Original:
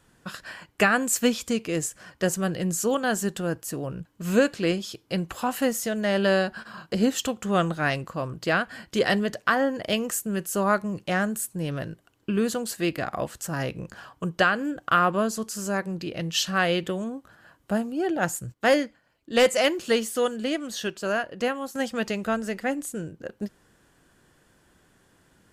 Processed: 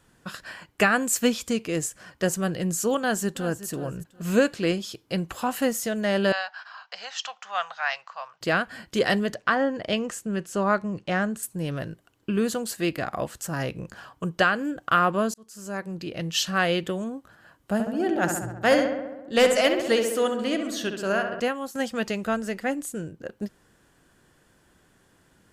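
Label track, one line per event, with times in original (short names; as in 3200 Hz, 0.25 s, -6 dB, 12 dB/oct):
2.980000	3.660000	echo throw 0.37 s, feedback 25%, level -14 dB
6.320000	8.410000	elliptic band-pass 770–5800 Hz
9.340000	11.430000	air absorption 72 m
15.340000	16.450000	fade in equal-power
17.730000	21.400000	darkening echo 67 ms, feedback 70%, low-pass 2700 Hz, level -6 dB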